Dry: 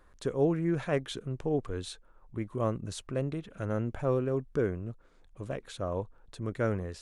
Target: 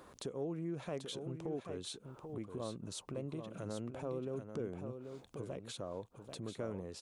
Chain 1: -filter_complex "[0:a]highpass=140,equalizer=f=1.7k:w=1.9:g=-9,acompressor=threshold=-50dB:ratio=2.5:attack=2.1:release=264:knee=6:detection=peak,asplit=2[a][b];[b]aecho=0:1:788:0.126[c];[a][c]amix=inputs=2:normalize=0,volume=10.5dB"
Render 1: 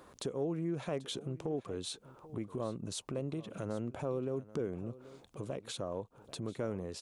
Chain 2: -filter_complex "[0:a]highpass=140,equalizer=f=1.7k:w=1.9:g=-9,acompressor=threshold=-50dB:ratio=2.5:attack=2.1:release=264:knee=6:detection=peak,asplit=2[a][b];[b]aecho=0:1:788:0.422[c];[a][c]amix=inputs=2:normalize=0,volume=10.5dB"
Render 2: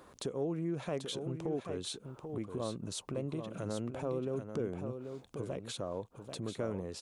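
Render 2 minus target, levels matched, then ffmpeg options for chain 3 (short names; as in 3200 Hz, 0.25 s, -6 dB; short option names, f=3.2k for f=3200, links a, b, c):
compressor: peak gain reduction -4.5 dB
-filter_complex "[0:a]highpass=140,equalizer=f=1.7k:w=1.9:g=-9,acompressor=threshold=-57.5dB:ratio=2.5:attack=2.1:release=264:knee=6:detection=peak,asplit=2[a][b];[b]aecho=0:1:788:0.422[c];[a][c]amix=inputs=2:normalize=0,volume=10.5dB"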